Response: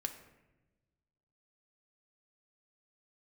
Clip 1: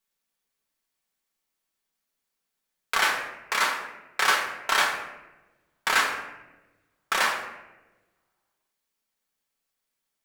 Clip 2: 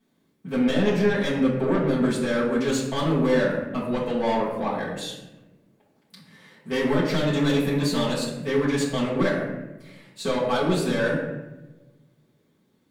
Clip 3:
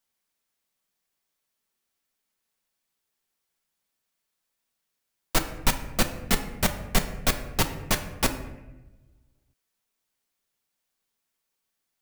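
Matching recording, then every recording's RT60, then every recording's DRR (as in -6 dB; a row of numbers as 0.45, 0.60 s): 3; 1.1 s, 1.1 s, not exponential; -1.0, -8.5, 5.0 dB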